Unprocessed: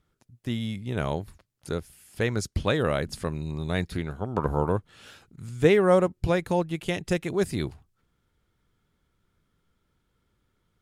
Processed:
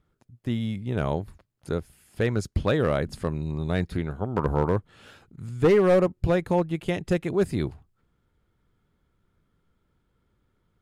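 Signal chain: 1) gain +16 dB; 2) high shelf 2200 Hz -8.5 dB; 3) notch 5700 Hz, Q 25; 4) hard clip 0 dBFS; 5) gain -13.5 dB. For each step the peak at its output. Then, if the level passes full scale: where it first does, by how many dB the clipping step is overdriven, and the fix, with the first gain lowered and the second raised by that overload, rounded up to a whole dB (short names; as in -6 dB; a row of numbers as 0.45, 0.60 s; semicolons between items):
+10.0, +9.5, +9.5, 0.0, -13.5 dBFS; step 1, 9.5 dB; step 1 +6 dB, step 5 -3.5 dB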